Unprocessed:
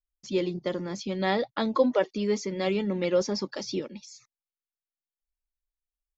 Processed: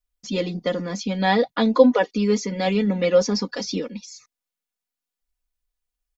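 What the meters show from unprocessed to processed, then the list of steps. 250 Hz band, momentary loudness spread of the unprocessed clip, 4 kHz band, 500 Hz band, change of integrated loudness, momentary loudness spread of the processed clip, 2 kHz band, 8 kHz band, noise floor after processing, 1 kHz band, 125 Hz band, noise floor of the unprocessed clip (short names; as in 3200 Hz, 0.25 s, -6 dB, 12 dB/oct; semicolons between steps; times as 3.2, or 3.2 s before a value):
+7.5 dB, 9 LU, +6.5 dB, +6.5 dB, +7.0 dB, 12 LU, +7.0 dB, n/a, under -85 dBFS, +7.0 dB, +7.0 dB, under -85 dBFS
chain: comb 4.1 ms, depth 80%; gain +4.5 dB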